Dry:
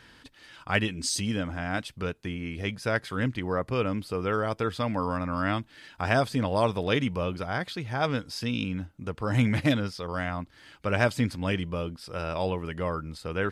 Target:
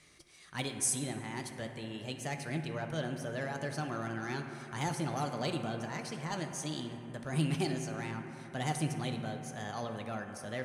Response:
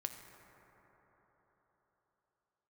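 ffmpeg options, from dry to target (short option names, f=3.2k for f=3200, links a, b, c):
-filter_complex "[0:a]lowpass=f=7.3k:t=q:w=6.9,acrossover=split=510|3000[a][b][c];[b]asoftclip=type=tanh:threshold=-25.5dB[d];[a][d][c]amix=inputs=3:normalize=0[e];[1:a]atrim=start_sample=2205[f];[e][f]afir=irnorm=-1:irlink=0,asetrate=56007,aresample=44100,volume=-7dB"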